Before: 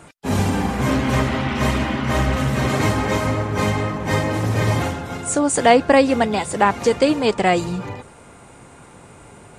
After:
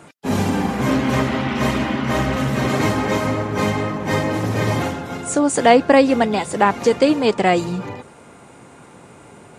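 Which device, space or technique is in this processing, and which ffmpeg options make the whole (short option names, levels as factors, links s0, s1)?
filter by subtraction: -filter_complex "[0:a]equalizer=f=8600:t=o:w=0.37:g=-3.5,asplit=2[s0][s1];[s1]lowpass=220,volume=-1[s2];[s0][s2]amix=inputs=2:normalize=0"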